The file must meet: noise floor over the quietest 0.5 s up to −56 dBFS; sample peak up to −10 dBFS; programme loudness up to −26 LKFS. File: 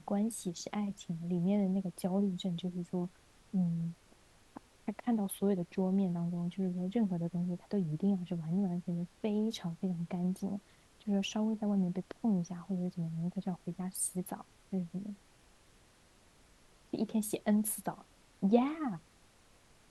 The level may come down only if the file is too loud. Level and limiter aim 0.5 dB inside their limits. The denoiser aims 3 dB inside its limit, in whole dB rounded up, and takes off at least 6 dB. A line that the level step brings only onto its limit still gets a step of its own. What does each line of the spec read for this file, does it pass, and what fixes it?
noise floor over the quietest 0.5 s −64 dBFS: in spec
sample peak −13.5 dBFS: in spec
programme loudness −35.5 LKFS: in spec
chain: no processing needed

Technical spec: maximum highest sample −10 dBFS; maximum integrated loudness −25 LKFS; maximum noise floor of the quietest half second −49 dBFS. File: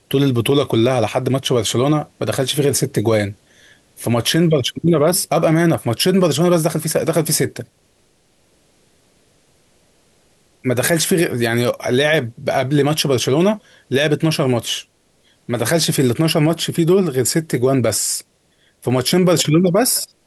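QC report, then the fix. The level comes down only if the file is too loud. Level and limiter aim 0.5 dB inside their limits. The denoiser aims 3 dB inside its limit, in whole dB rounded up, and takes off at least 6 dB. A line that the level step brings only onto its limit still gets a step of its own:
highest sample −5.0 dBFS: out of spec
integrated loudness −17.0 LKFS: out of spec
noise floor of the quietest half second −58 dBFS: in spec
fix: level −8.5 dB

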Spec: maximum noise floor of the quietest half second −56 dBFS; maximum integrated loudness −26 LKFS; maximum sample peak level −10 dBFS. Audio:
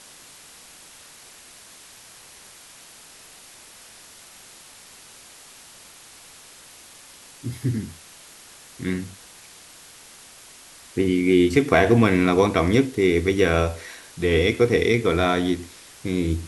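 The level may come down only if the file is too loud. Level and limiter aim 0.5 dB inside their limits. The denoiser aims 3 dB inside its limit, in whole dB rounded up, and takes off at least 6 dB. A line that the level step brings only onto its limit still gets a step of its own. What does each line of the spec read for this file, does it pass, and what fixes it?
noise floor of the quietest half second −47 dBFS: out of spec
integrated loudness −21.0 LKFS: out of spec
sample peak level −4.0 dBFS: out of spec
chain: broadband denoise 7 dB, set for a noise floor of −47 dBFS
level −5.5 dB
brickwall limiter −10.5 dBFS

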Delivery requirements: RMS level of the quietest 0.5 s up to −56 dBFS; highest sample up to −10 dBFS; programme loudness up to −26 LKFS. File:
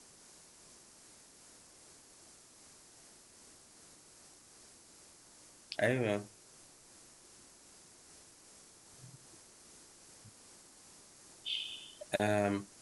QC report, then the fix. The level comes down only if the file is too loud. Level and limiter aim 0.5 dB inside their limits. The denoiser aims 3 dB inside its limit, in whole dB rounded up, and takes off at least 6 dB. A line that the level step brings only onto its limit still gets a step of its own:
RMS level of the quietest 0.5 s −60 dBFS: in spec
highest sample −16.0 dBFS: in spec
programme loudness −35.5 LKFS: in spec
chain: no processing needed

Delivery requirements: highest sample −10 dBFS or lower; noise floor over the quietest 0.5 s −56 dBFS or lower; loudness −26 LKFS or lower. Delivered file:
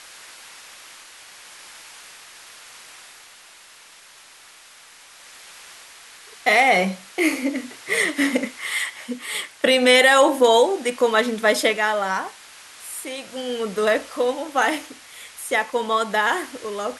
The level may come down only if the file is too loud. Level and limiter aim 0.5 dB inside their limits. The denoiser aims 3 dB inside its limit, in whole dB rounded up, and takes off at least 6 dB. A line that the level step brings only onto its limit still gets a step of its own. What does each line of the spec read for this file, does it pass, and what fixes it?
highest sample −4.5 dBFS: out of spec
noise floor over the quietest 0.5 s −48 dBFS: out of spec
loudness −20.0 LKFS: out of spec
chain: broadband denoise 6 dB, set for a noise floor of −48 dBFS
level −6.5 dB

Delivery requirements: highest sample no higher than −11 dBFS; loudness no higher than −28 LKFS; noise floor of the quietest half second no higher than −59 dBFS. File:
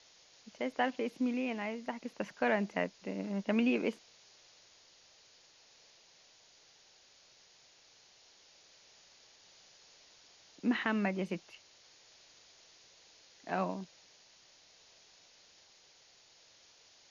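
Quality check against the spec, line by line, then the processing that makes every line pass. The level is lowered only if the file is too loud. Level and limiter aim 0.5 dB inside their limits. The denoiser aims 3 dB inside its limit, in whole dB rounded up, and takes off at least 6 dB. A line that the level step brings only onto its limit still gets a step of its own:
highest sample −16.0 dBFS: in spec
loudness −35.0 LKFS: in spec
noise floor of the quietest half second −63 dBFS: in spec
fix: no processing needed

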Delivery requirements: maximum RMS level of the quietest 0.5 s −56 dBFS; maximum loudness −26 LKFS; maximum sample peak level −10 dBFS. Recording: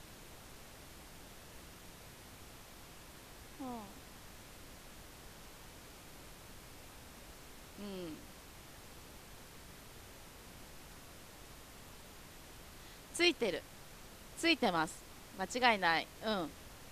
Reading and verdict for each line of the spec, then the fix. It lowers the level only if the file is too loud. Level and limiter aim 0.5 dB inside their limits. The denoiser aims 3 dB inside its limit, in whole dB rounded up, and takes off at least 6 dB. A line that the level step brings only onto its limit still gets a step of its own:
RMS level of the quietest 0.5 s −54 dBFS: out of spec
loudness −35.5 LKFS: in spec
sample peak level −13.0 dBFS: in spec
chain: broadband denoise 6 dB, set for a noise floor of −54 dBFS

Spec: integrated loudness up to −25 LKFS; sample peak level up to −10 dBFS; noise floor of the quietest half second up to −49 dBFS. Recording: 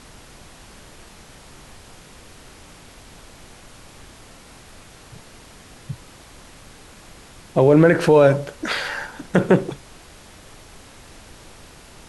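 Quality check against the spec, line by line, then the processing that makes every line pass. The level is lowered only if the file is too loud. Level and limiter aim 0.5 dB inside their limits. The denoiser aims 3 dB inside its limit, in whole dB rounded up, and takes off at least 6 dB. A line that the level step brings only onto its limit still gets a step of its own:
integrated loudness −18.0 LKFS: out of spec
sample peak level −4.0 dBFS: out of spec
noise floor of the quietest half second −45 dBFS: out of spec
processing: level −7.5 dB

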